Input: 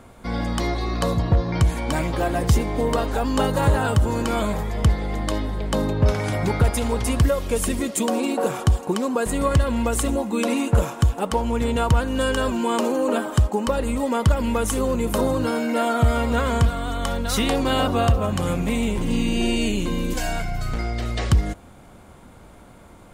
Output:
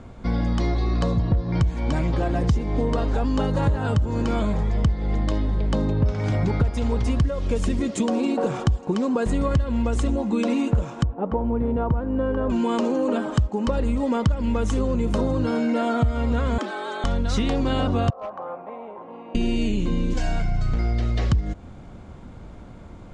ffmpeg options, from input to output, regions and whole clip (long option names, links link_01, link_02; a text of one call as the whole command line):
ffmpeg -i in.wav -filter_complex "[0:a]asettb=1/sr,asplit=3[link_01][link_02][link_03];[link_01]atrim=end=11.034[link_04];[link_02]atrim=start=11.03:end=12.5,asetpts=PTS-STARTPTS,afade=type=in:duration=0.004:curve=qsin,afade=type=out:start_time=1.466:duration=0.004:curve=qsin,lowpass=1000,lowshelf=frequency=130:gain=-8.5[link_05];[link_03]atrim=start=12.496[link_06];[link_04][link_05]acrossfade=duration=0.004:curve1=hsin:curve2=qsin[link_07];[link_07][link_06]acrossfade=duration=0.004:curve1=qsin:curve2=hsin,asettb=1/sr,asplit=3[link_08][link_09][link_10];[link_08]atrim=end=16.584[link_11];[link_09]atrim=start=16.58:end=17.04,asetpts=PTS-STARTPTS,afade=type=in:duration=0.004:curve=qsin,afade=type=out:start_time=0.456:duration=0.004:curve=qsin,highpass=290,afreqshift=140[link_12];[link_10]atrim=start=17.036[link_13];[link_11][link_12]acrossfade=duration=0.004:curve1=hsin:curve2=qsin[link_14];[link_14][link_13]acrossfade=duration=0.004:curve1=qsin:curve2=hsin,asettb=1/sr,asplit=3[link_15][link_16][link_17];[link_15]atrim=end=18.104[link_18];[link_16]atrim=start=18.1:end=19.35,asetpts=PTS-STARTPTS,afade=type=in:duration=0.004:curve=qsin,afade=type=out:start_time=1.246:duration=0.004:curve=qsin,asuperpass=centerf=840:order=4:qfactor=1.4,asoftclip=type=hard:threshold=-24dB[link_19];[link_17]atrim=start=19.346[link_20];[link_18][link_19]acrossfade=duration=0.004:curve1=hsin:curve2=qsin[link_21];[link_21][link_20]acrossfade=duration=0.004:curve1=qsin:curve2=hsin,lowpass=frequency=6800:width=0.5412,lowpass=frequency=6800:width=1.3066,lowshelf=frequency=340:gain=10,acompressor=threshold=-17dB:ratio=4,volume=-2dB" out.wav